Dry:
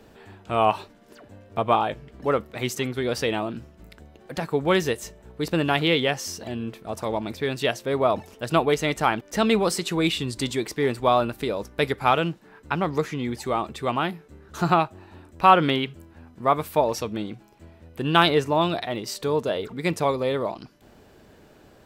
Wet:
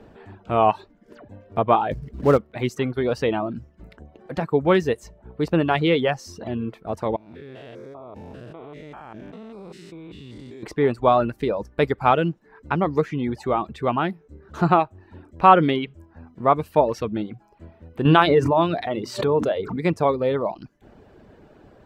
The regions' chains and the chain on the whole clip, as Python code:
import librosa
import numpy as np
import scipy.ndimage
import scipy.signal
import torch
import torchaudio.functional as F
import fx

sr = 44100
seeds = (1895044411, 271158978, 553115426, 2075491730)

y = fx.chain(x, sr, fx.low_shelf(hz=300.0, db=9.0),
    fx.quant_float(bits=2), at=(1.91, 2.38))
y = fx.chain(y, sr, fx.spec_steps(hold_ms=200),
    fx.level_steps(step_db=21), at=(7.16, 10.63))
y = fx.chain(y, sr, fx.highpass(hz=44.0, slope=12),
    fx.hum_notches(base_hz=60, count=6),
    fx.pre_swell(db_per_s=38.0), at=(18.05, 19.85))
y = fx.dereverb_blind(y, sr, rt60_s=0.55)
y = fx.lowpass(y, sr, hz=1300.0, slope=6)
y = F.gain(torch.from_numpy(y), 4.5).numpy()